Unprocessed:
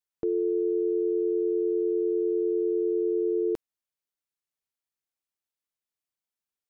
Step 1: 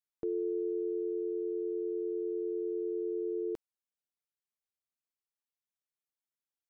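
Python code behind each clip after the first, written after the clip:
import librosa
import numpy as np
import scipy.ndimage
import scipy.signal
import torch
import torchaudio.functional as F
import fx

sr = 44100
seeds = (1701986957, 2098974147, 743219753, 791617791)

y = fx.rider(x, sr, range_db=10, speed_s=2.0)
y = y * librosa.db_to_amplitude(-8.5)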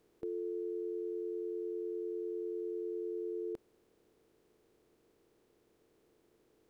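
y = fx.bin_compress(x, sr, power=0.4)
y = y * librosa.db_to_amplitude(-5.5)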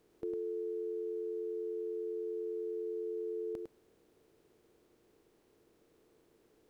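y = x + 10.0 ** (-5.0 / 20.0) * np.pad(x, (int(104 * sr / 1000.0), 0))[:len(x)]
y = y * librosa.db_to_amplitude(1.0)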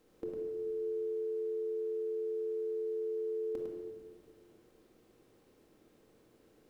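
y = fx.room_shoebox(x, sr, seeds[0], volume_m3=1700.0, walls='mixed', distance_m=2.1)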